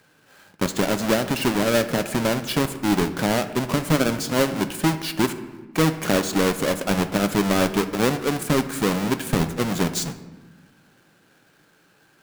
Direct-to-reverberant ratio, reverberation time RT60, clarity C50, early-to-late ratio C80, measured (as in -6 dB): 9.5 dB, 1.3 s, 12.0 dB, 13.5 dB